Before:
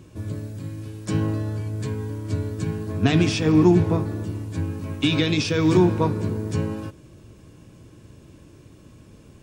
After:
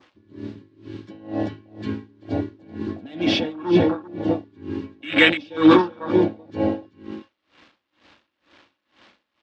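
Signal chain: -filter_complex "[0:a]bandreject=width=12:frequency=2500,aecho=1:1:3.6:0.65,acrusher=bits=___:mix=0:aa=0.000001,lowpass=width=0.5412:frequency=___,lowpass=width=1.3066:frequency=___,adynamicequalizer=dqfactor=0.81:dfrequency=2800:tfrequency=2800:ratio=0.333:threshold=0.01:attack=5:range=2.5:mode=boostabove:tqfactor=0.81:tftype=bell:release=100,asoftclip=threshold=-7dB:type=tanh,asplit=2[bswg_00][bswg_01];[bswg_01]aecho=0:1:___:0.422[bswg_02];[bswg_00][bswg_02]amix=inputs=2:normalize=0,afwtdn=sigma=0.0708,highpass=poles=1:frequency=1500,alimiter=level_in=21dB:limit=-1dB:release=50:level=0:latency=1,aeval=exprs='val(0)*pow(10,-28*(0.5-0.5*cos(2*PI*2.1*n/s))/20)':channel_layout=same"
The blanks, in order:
7, 4000, 4000, 384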